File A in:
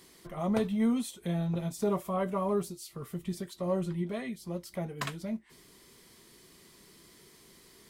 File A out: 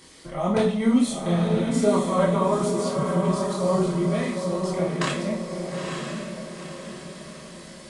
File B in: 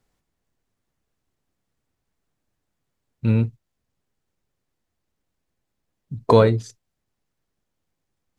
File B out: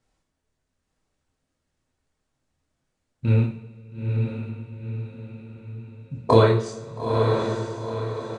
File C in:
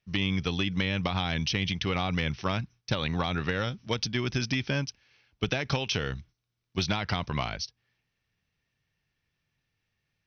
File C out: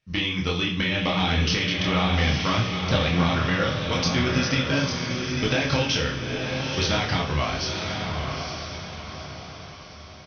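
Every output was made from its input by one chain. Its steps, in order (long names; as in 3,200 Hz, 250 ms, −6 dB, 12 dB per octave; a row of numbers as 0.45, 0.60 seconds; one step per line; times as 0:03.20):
multi-voice chorus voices 4, 1.3 Hz, delay 26 ms, depth 3 ms
coupled-rooms reverb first 0.49 s, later 2.6 s, from −20 dB, DRR 2 dB
downsampling to 22,050 Hz
feedback delay with all-pass diffusion 911 ms, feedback 45%, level −4 dB
loudness normalisation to −24 LKFS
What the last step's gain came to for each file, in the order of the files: +10.5, +1.5, +6.5 decibels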